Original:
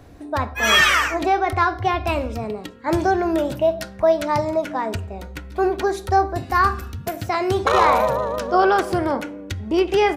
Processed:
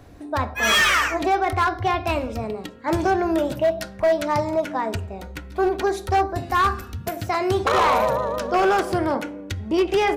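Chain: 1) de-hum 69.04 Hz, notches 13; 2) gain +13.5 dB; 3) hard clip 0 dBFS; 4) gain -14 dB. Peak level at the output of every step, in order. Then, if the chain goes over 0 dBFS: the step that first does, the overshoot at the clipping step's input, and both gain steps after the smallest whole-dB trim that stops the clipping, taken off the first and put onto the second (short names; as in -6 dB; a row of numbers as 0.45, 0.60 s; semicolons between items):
-4.5, +9.0, 0.0, -14.0 dBFS; step 2, 9.0 dB; step 2 +4.5 dB, step 4 -5 dB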